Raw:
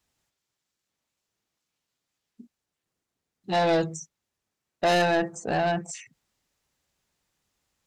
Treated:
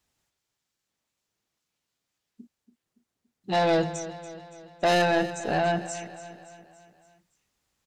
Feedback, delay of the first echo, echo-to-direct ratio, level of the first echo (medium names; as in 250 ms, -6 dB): 53%, 284 ms, -12.5 dB, -14.0 dB